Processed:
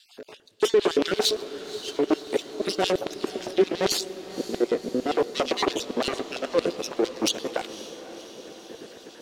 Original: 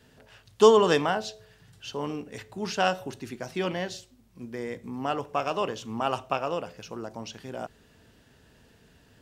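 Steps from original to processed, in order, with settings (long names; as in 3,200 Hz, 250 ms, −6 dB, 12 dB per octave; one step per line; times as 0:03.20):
time-frequency cells dropped at random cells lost 32%
low-shelf EQ 350 Hz +10 dB
leveller curve on the samples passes 1
reversed playback
downward compressor 5 to 1, threshold −32 dBFS, peak gain reduction 20 dB
reversed playback
harmonic generator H 5 −8 dB, 8 −8 dB, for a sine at −19.5 dBFS
auto-filter high-pass square 8.8 Hz 360–3,800 Hz
rotating-speaker cabinet horn 5.5 Hz, later 0.6 Hz, at 0:03.05
feedback delay with all-pass diffusion 534 ms, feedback 65%, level −14.5 dB
on a send at −21.5 dB: convolution reverb RT60 4.1 s, pre-delay 96 ms
on the sum: level +3.5 dB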